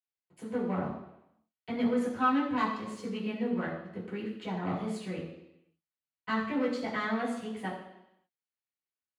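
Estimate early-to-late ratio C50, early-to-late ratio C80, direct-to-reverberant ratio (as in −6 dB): 5.0 dB, 7.0 dB, −9.0 dB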